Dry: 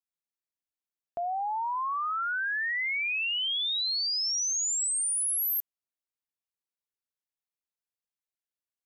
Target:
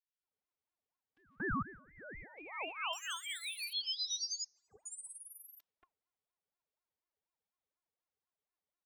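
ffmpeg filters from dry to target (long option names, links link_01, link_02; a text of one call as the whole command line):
ffmpeg -i in.wav -filter_complex "[0:a]asettb=1/sr,asplit=3[link_01][link_02][link_03];[link_01]atrim=end=1.394[link_04];[link_02]atrim=start=1.39:end=2.38,asetpts=PTS-STARTPTS,afade=type=in:duration=0.004:curve=qsin,afade=type=out:start_time=0.986:duration=0.004:curve=qsin,agate=range=-33dB:threshold=-18dB:ratio=3:detection=peak[link_05];[link_03]atrim=start=2.376[link_06];[link_04][link_05]acrossfade=duration=0.004:curve1=hsin:curve2=qsin[link_07];[link_07][link_06]acrossfade=duration=0.004:curve1=qsin:curve2=hsin,asettb=1/sr,asplit=3[link_08][link_09][link_10];[link_08]atrim=end=4.444[link_11];[link_09]atrim=start=4.44:end=4.86,asetpts=PTS-STARTPTS,afade=type=in:duration=0.004:curve=qsin,afade=type=out:start_time=0.416:duration=0.004:curve=qsin,adynamicsmooth=sensitivity=1.5:basefreq=560[link_12];[link_10]atrim=start=4.856[link_13];[link_11][link_12]acrossfade=duration=0.004:curve1=hsin:curve2=qsin[link_14];[link_14][link_13]acrossfade=duration=0.004:curve1=qsin:curve2=hsin,lowpass=3300,lowshelf=frequency=480:gain=10.5,alimiter=level_in=10dB:limit=-24dB:level=0:latency=1:release=44,volume=-10dB,bandreject=frequency=303.9:width_type=h:width=4,bandreject=frequency=607.8:width_type=h:width=4,bandreject=frequency=911.7:width_type=h:width=4,bandreject=frequency=1215.6:width_type=h:width=4,bandreject=frequency=1519.5:width_type=h:width=4,bandreject=frequency=1823.4:width_type=h:width=4,bandreject=frequency=2127.3:width_type=h:width=4,bandreject=frequency=2431.2:width_type=h:width=4,bandreject=frequency=2735.1:width_type=h:width=4,bandreject=frequency=3039:width_type=h:width=4,bandreject=frequency=3342.9:width_type=h:width=4,bandreject=frequency=3646.8:width_type=h:width=4,bandreject=frequency=3950.7:width_type=h:width=4,bandreject=frequency=4254.6:width_type=h:width=4,bandreject=frequency=4558.5:width_type=h:width=4,bandreject=frequency=4862.4:width_type=h:width=4,bandreject=frequency=5166.3:width_type=h:width=4,bandreject=frequency=5470.2:width_type=h:width=4,bandreject=frequency=5774.1:width_type=h:width=4,bandreject=frequency=6078:width_type=h:width=4,bandreject=frequency=6381.9:width_type=h:width=4,bandreject=frequency=6685.8:width_type=h:width=4,bandreject=frequency=6989.7:width_type=h:width=4,afreqshift=-69,asettb=1/sr,asplit=3[link_15][link_16][link_17];[link_15]atrim=end=2.934[link_18];[link_16]atrim=start=2.93:end=3.73,asetpts=PTS-STARTPTS,afade=type=in:duration=0.004:curve=qsin,afade=type=out:start_time=0.796:duration=0.004:curve=qsin,aeval=exprs='0.0133*(abs(mod(val(0)/0.0133+3,4)-2)-1)':channel_layout=same[link_19];[link_17]atrim=start=3.726[link_20];[link_18][link_19]acrossfade=duration=0.004:curve1=hsin:curve2=qsin[link_21];[link_21][link_20]acrossfade=duration=0.004:curve1=qsin:curve2=hsin,afftfilt=real='hypot(re,im)*cos(PI*b)':imag='0':win_size=512:overlap=0.75,acrossover=split=1800[link_22][link_23];[link_22]adelay=230[link_24];[link_24][link_23]amix=inputs=2:normalize=0,aeval=exprs='val(0)*sin(2*PI*750*n/s+750*0.45/4.1*sin(2*PI*4.1*n/s))':channel_layout=same,volume=6dB" out.wav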